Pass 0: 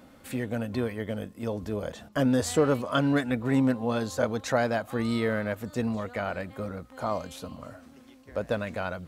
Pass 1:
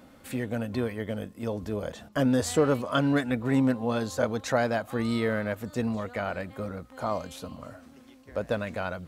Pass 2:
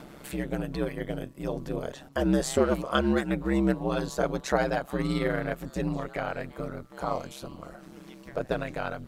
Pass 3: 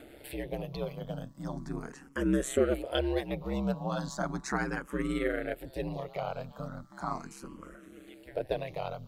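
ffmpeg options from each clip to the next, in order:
-af anull
-af "acompressor=mode=upward:threshold=0.0126:ratio=2.5,aeval=exprs='val(0)*sin(2*PI*67*n/s)':c=same,volume=1.33"
-filter_complex "[0:a]asplit=2[s0][s1];[s1]afreqshift=0.37[s2];[s0][s2]amix=inputs=2:normalize=1,volume=0.841"

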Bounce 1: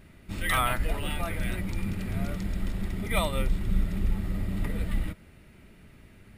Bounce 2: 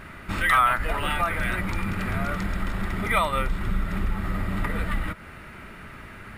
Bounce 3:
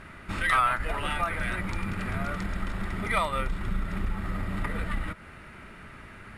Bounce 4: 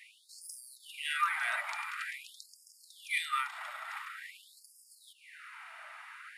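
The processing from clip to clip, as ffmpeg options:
-af "equalizer=f=1300:w=0.86:g=15,acompressor=threshold=0.0178:ratio=2,volume=2.37"
-af "aeval=exprs='0.422*(cos(1*acos(clip(val(0)/0.422,-1,1)))-cos(1*PI/2))+0.0841*(cos(2*acos(clip(val(0)/0.422,-1,1)))-cos(2*PI/2))':c=same,lowpass=f=12000:w=0.5412,lowpass=f=12000:w=1.3066,volume=0.631"
-af "afftfilt=real='re*gte(b*sr/1024,590*pow(4800/590,0.5+0.5*sin(2*PI*0.47*pts/sr)))':imag='im*gte(b*sr/1024,590*pow(4800/590,0.5+0.5*sin(2*PI*0.47*pts/sr)))':win_size=1024:overlap=0.75"

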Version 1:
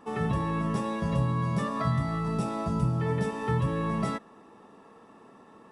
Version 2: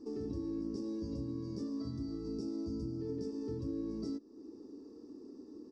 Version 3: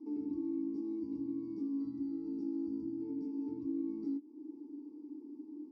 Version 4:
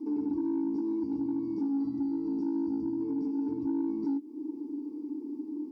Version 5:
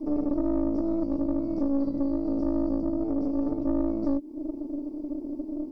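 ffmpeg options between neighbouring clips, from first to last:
-af "firequalizer=gain_entry='entry(100,0);entry(150,-17);entry(290,13);entry(650,-18);entry(1600,-25);entry(3300,-23);entry(4800,8);entry(9000,-18)':delay=0.05:min_phase=1,acompressor=threshold=0.00631:ratio=2"
-filter_complex "[0:a]asplit=3[s0][s1][s2];[s0]bandpass=f=300:t=q:w=8,volume=1[s3];[s1]bandpass=f=870:t=q:w=8,volume=0.501[s4];[s2]bandpass=f=2240:t=q:w=8,volume=0.355[s5];[s3][s4][s5]amix=inputs=3:normalize=0,volume=2.24"
-filter_complex "[0:a]asplit=2[s0][s1];[s1]acompressor=threshold=0.00562:ratio=6,volume=0.75[s2];[s0][s2]amix=inputs=2:normalize=0,asoftclip=type=tanh:threshold=0.0335,volume=2.11"
-af "aeval=exprs='0.0631*(cos(1*acos(clip(val(0)/0.0631,-1,1)))-cos(1*PI/2))+0.0251*(cos(2*acos(clip(val(0)/0.0631,-1,1)))-cos(2*PI/2))':c=same,volume=1.5"

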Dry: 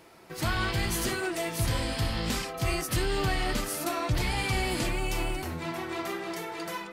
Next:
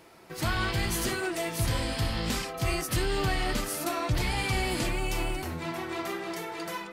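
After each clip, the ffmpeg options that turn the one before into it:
-af anull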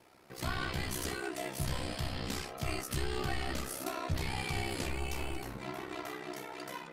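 -af "aeval=exprs='val(0)*sin(2*PI*32*n/s)':c=same,flanger=delay=8.6:depth=5.9:regen=74:speed=1.5:shape=triangular"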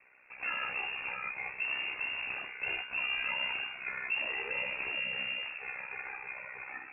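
-af "lowpass=f=2400:t=q:w=0.5098,lowpass=f=2400:t=q:w=0.6013,lowpass=f=2400:t=q:w=0.9,lowpass=f=2400:t=q:w=2.563,afreqshift=-2800"

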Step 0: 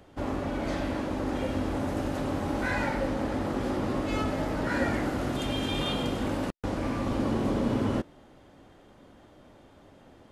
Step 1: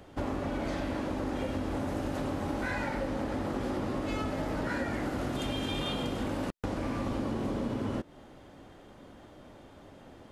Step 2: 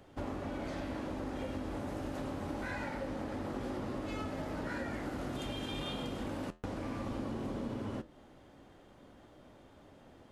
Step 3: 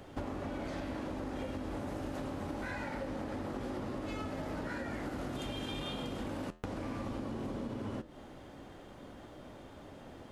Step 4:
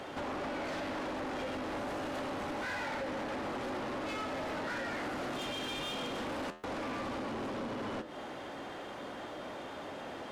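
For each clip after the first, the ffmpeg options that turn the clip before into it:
-af "acompressor=threshold=0.0251:ratio=6,volume=1.33"
-af "flanger=delay=7.4:depth=10:regen=-77:speed=0.27:shape=triangular,volume=0.841"
-af "acompressor=threshold=0.00708:ratio=6,volume=2.24"
-filter_complex "[0:a]asplit=2[s0][s1];[s1]highpass=f=720:p=1,volume=28.2,asoftclip=type=tanh:threshold=0.0891[s2];[s0][s2]amix=inputs=2:normalize=0,lowpass=f=3800:p=1,volume=0.501,volume=0.376"

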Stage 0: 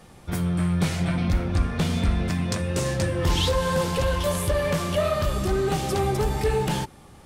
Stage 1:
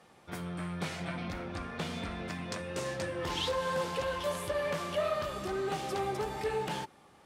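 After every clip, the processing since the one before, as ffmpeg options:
-af "highpass=f=490:p=1,aemphasis=mode=reproduction:type=cd,volume=0.531"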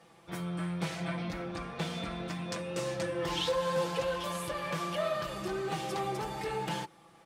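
-af "aecho=1:1:6:0.7,volume=0.891"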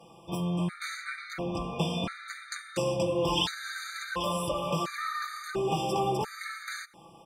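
-af "afftfilt=real='re*gt(sin(2*PI*0.72*pts/sr)*(1-2*mod(floor(b*sr/1024/1200),2)),0)':imag='im*gt(sin(2*PI*0.72*pts/sr)*(1-2*mod(floor(b*sr/1024/1200),2)),0)':win_size=1024:overlap=0.75,volume=2.11"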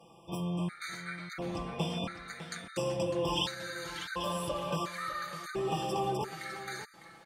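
-af "aecho=1:1:603:0.224,volume=0.631"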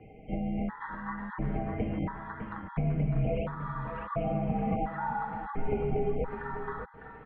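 -filter_complex "[0:a]acrossover=split=310|1600[s0][s1][s2];[s0]acompressor=threshold=0.01:ratio=4[s3];[s1]acompressor=threshold=0.02:ratio=4[s4];[s2]acompressor=threshold=0.00158:ratio=4[s5];[s3][s4][s5]amix=inputs=3:normalize=0,highpass=f=160:t=q:w=0.5412,highpass=f=160:t=q:w=1.307,lowpass=f=2600:t=q:w=0.5176,lowpass=f=2600:t=q:w=0.7071,lowpass=f=2600:t=q:w=1.932,afreqshift=-380,volume=2.37"

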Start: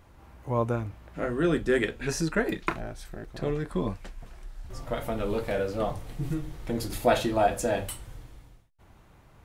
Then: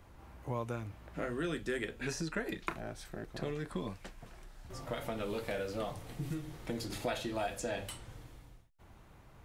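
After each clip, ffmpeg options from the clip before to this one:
-filter_complex "[0:a]acrossover=split=95|1800|7900[s0][s1][s2][s3];[s0]acompressor=threshold=0.00316:ratio=4[s4];[s1]acompressor=threshold=0.02:ratio=4[s5];[s2]acompressor=threshold=0.01:ratio=4[s6];[s3]acompressor=threshold=0.00158:ratio=4[s7];[s4][s5][s6][s7]amix=inputs=4:normalize=0,volume=0.794"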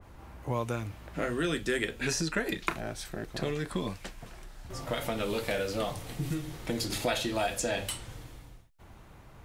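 -af "adynamicequalizer=threshold=0.00224:dfrequency=2100:dqfactor=0.7:tfrequency=2100:tqfactor=0.7:attack=5:release=100:ratio=0.375:range=2.5:mode=boostabove:tftype=highshelf,volume=1.88"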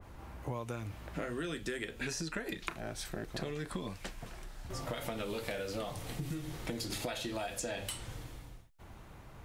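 -af "acompressor=threshold=0.0178:ratio=6"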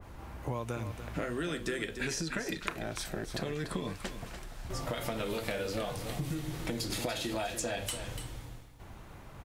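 -af "aecho=1:1:291:0.335,volume=1.41"

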